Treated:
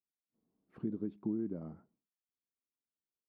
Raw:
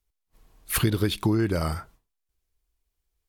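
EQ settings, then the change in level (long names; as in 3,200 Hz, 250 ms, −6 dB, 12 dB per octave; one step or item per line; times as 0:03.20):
four-pole ladder band-pass 270 Hz, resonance 45%
parametric band 190 Hz +2.5 dB 0.7 octaves
−3.5 dB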